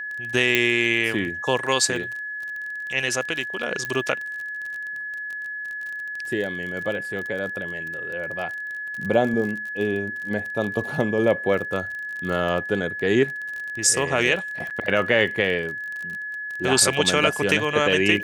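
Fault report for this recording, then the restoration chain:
surface crackle 30 per second −29 dBFS
whistle 1,700 Hz −29 dBFS
0:00.55: click −4 dBFS
0:03.85: click −14 dBFS
0:14.70–0:14.71: drop-out 7.6 ms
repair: click removal
notch filter 1,700 Hz, Q 30
repair the gap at 0:14.70, 7.6 ms

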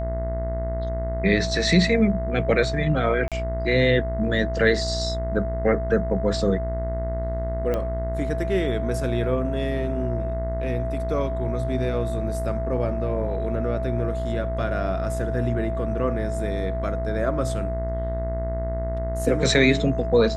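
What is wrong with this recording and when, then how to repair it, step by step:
mains buzz 60 Hz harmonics 35 −28 dBFS
whistle 660 Hz −29 dBFS
0:03.28–0:03.32: drop-out 37 ms
0:07.74: click −14 dBFS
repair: click removal
notch filter 660 Hz, Q 30
hum removal 60 Hz, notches 35
repair the gap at 0:03.28, 37 ms

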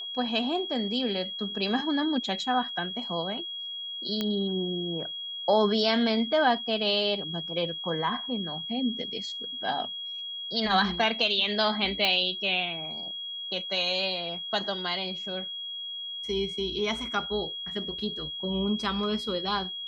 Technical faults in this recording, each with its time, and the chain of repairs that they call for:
whistle 3,300 Hz −34 dBFS
0:04.21: click −15 dBFS
0:12.05: click −11 dBFS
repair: click removal
notch filter 3,300 Hz, Q 30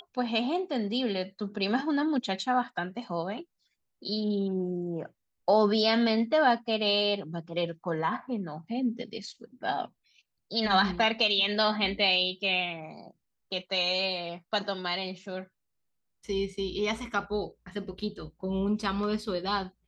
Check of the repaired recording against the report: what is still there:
none of them is left

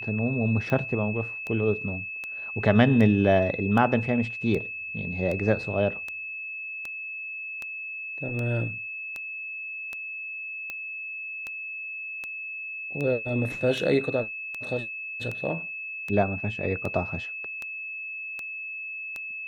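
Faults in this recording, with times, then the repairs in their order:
scratch tick 78 rpm −20 dBFS
whistle 2,600 Hz −33 dBFS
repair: click removal
notch filter 2,600 Hz, Q 30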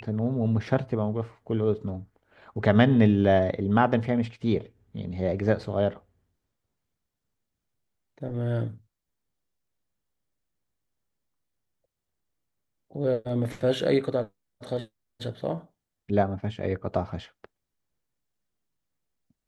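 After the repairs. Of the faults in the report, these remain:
none of them is left

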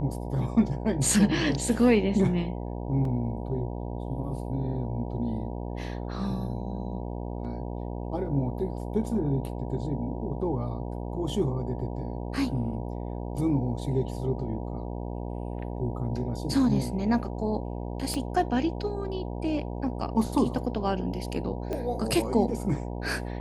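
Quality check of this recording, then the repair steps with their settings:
mains buzz 60 Hz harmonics 16 −34 dBFS
0:03.05: drop-out 2.8 ms
0:18.14: click −18 dBFS
0:21.73: click −20 dBFS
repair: click removal
hum removal 60 Hz, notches 16
repair the gap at 0:03.05, 2.8 ms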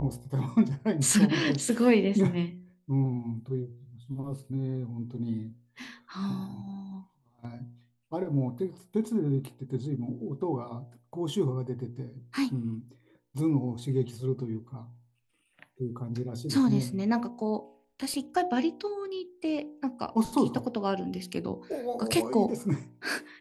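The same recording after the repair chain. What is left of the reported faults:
0:18.14: click

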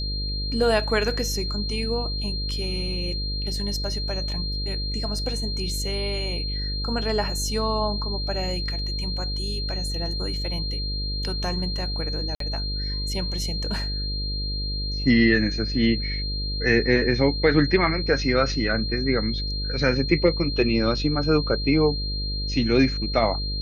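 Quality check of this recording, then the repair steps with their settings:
mains buzz 50 Hz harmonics 11 −29 dBFS
whistle 4,200 Hz −30 dBFS
0:12.35–0:12.40: drop-out 53 ms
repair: notch filter 4,200 Hz, Q 30
hum removal 50 Hz, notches 11
repair the gap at 0:12.35, 53 ms

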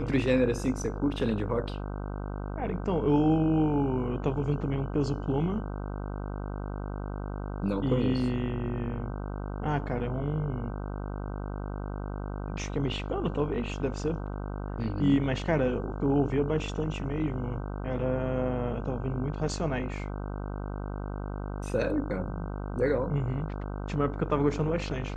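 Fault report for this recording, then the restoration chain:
mains buzz 50 Hz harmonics 31 −35 dBFS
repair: hum removal 50 Hz, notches 31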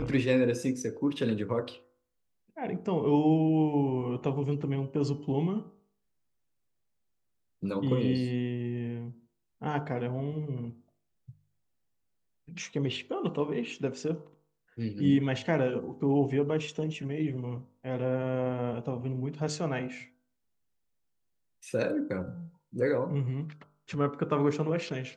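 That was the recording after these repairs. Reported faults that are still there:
none of them is left

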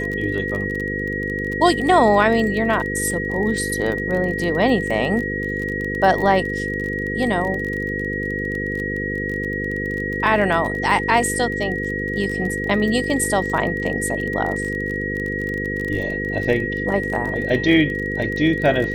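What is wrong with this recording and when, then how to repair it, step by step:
mains buzz 50 Hz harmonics 10 −27 dBFS
surface crackle 27 per second −25 dBFS
whistle 1,900 Hz −25 dBFS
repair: click removal
hum removal 50 Hz, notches 10
notch filter 1,900 Hz, Q 30

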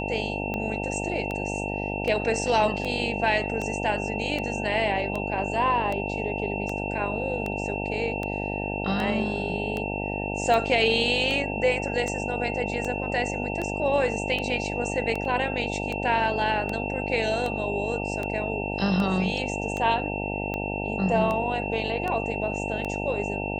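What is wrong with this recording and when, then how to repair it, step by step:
mains buzz 50 Hz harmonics 18 −31 dBFS
scratch tick 78 rpm −17 dBFS
whistle 2,700 Hz −33 dBFS
0:15.25: drop-out 2.5 ms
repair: click removal
notch filter 2,700 Hz, Q 30
hum removal 50 Hz, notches 18
repair the gap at 0:15.25, 2.5 ms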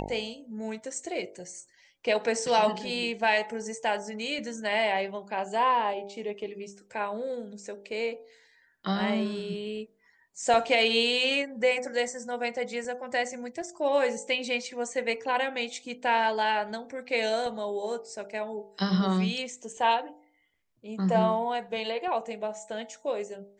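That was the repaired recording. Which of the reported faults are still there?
none of them is left

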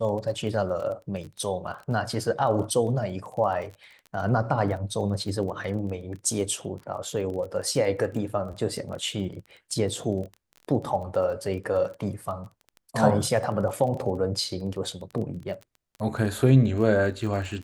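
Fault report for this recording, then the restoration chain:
surface crackle 23 per second −34 dBFS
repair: click removal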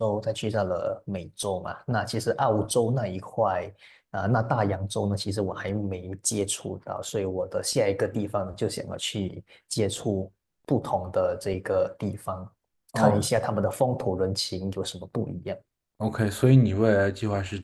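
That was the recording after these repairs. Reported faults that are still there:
none of them is left

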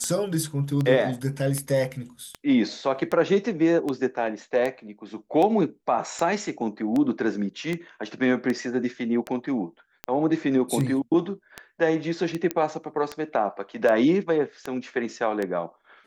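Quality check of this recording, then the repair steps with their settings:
scratch tick 78 rpm −15 dBFS
0:12.51: click −11 dBFS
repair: click removal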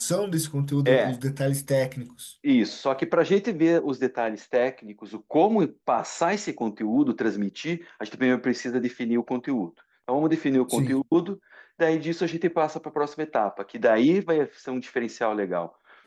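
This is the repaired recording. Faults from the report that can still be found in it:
none of them is left

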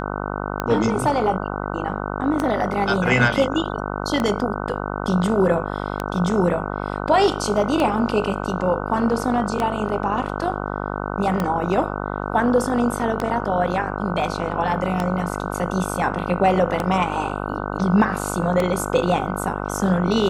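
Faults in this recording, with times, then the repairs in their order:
mains buzz 50 Hz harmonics 30 −27 dBFS
scratch tick 33 1/3 rpm −9 dBFS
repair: click removal
hum removal 50 Hz, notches 30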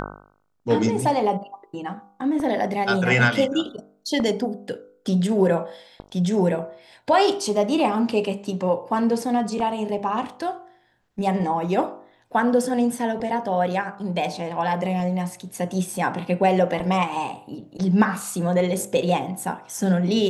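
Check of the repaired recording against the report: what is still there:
none of them is left

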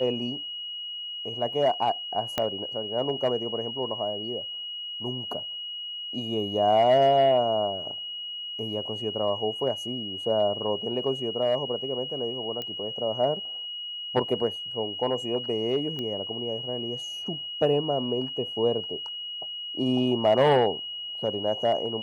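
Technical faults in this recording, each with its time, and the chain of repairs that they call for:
whistle 2,900 Hz −33 dBFS
0:02.38: click −11 dBFS
0:12.62: click −20 dBFS
0:15.99: click −21 dBFS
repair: click removal
notch filter 2,900 Hz, Q 30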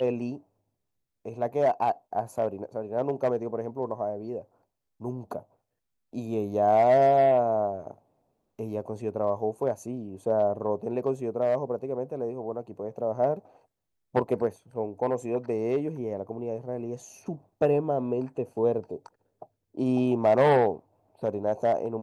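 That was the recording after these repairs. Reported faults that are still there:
0:02.38: click

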